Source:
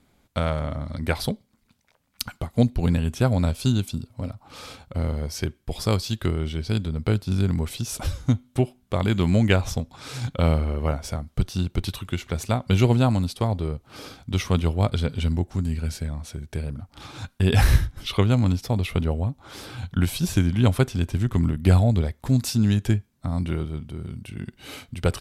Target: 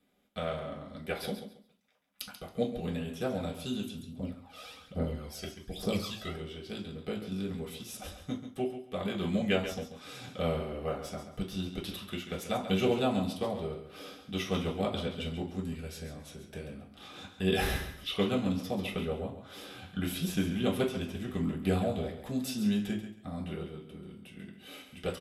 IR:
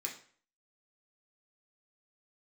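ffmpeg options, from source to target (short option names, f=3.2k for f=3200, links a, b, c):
-filter_complex "[0:a]bass=f=250:g=2,treble=f=4k:g=-4,aecho=1:1:137|274|411:0.316|0.0727|0.0167,asplit=3[a][b][c];[a]afade=t=out:st=3.97:d=0.02[d];[b]aphaser=in_gain=1:out_gain=1:delay=1.6:decay=0.7:speed=1.2:type=triangular,afade=t=in:st=3.97:d=0.02,afade=t=out:st=6.36:d=0.02[e];[c]afade=t=in:st=6.36:d=0.02[f];[d][e][f]amix=inputs=3:normalize=0,dynaudnorm=f=830:g=9:m=11.5dB[g];[1:a]atrim=start_sample=2205,asetrate=66150,aresample=44100[h];[g][h]afir=irnorm=-1:irlink=0,volume=-4dB"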